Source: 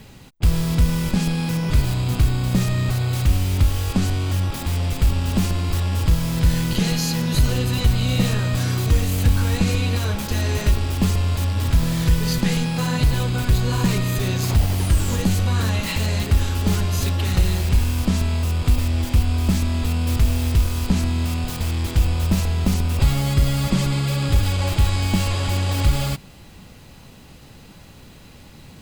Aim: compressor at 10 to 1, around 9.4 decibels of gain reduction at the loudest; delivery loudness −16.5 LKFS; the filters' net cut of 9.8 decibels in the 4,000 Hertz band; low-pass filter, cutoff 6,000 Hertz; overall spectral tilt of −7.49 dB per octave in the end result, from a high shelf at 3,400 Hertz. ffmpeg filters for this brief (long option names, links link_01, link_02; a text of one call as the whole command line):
ffmpeg -i in.wav -af "lowpass=6000,highshelf=frequency=3400:gain=-9,equalizer=frequency=4000:width_type=o:gain=-5.5,acompressor=threshold=-21dB:ratio=10,volume=10dB" out.wav